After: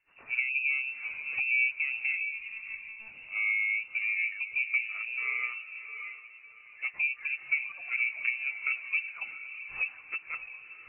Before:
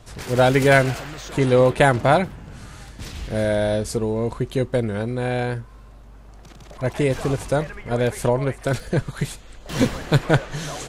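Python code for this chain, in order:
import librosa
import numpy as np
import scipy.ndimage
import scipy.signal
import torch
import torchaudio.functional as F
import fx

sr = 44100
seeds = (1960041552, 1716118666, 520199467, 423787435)

y = fx.fade_out_tail(x, sr, length_s=1.52)
y = scipy.signal.sosfilt(scipy.signal.butter(2, 60.0, 'highpass', fs=sr, output='sos'), y)
y = fx.env_lowpass_down(y, sr, base_hz=350.0, full_db=-14.5)
y = fx.low_shelf(y, sr, hz=220.0, db=-8.5)
y = fx.freq_invert(y, sr, carrier_hz=2800)
y = fx.air_absorb(y, sr, metres=190.0)
y = fx.echo_diffused(y, sr, ms=650, feedback_pct=46, wet_db=-5.5)
y = fx.lpc_monotone(y, sr, seeds[0], pitch_hz=220.0, order=8, at=(2.32, 3.1))
y = fx.spectral_expand(y, sr, expansion=1.5)
y = y * librosa.db_to_amplitude(-5.0)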